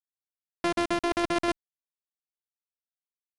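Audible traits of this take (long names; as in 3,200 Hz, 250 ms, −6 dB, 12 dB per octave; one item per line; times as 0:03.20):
a buzz of ramps at a fixed pitch in blocks of 128 samples
tremolo saw down 8.1 Hz, depth 40%
a quantiser's noise floor 8 bits, dither none
IMA ADPCM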